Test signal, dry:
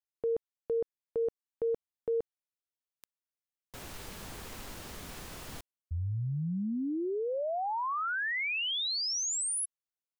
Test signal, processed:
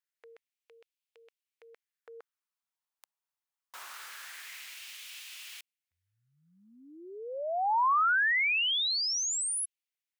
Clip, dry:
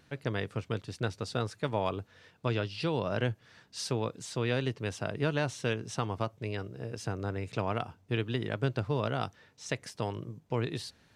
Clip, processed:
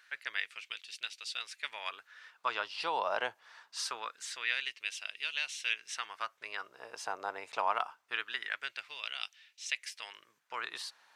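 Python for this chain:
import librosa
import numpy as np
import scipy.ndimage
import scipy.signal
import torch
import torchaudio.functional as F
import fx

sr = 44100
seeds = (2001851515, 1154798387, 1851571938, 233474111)

y = fx.filter_lfo_highpass(x, sr, shape='sine', hz=0.24, low_hz=850.0, high_hz=2700.0, q=2.4)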